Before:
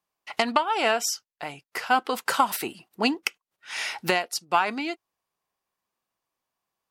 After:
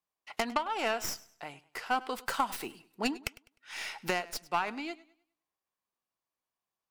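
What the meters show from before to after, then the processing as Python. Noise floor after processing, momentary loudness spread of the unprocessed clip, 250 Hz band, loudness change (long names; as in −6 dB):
below −85 dBFS, 12 LU, −7.5 dB, −8.5 dB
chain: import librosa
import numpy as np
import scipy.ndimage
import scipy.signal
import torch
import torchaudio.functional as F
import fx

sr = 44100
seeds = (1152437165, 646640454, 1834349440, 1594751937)

y = fx.tracing_dist(x, sr, depth_ms=0.13)
y = fx.echo_warbled(y, sr, ms=102, feedback_pct=33, rate_hz=2.8, cents=66, wet_db=-19.5)
y = y * 10.0 ** (-8.5 / 20.0)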